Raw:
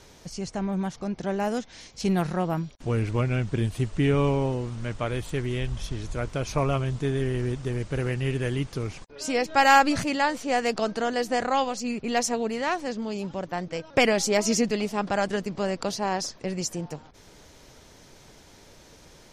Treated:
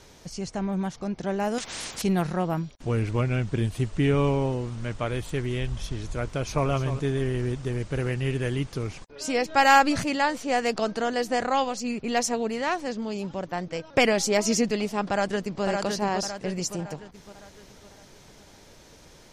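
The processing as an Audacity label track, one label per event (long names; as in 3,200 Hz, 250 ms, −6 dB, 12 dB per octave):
1.580000	2.020000	every bin compressed towards the loudest bin 4 to 1
6.240000	6.690000	delay throw 300 ms, feedback 20%, level −10.5 dB
15.100000	15.640000	delay throw 560 ms, feedback 45%, level −4 dB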